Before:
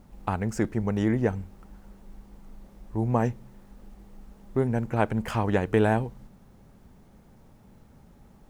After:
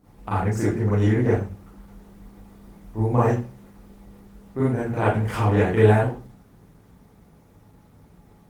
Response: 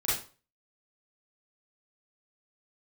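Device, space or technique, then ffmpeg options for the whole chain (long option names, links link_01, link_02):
far-field microphone of a smart speaker: -filter_complex "[1:a]atrim=start_sample=2205[link_01];[0:a][link_01]afir=irnorm=-1:irlink=0,highpass=frequency=95:poles=1,dynaudnorm=framelen=220:gausssize=17:maxgain=4dB,volume=-3dB" -ar 48000 -c:a libopus -b:a 20k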